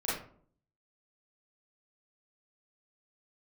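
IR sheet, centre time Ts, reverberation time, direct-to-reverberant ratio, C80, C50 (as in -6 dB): 54 ms, 0.55 s, -10.0 dB, 7.5 dB, 1.0 dB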